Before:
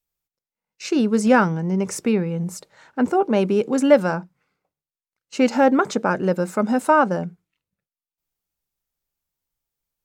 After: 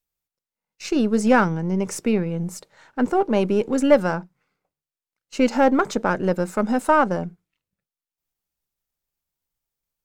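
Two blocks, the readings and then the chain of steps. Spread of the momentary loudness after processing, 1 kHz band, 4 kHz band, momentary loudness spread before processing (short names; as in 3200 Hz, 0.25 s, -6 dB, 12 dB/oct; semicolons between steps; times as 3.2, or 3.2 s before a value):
13 LU, -1.0 dB, -1.0 dB, 14 LU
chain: half-wave gain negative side -3 dB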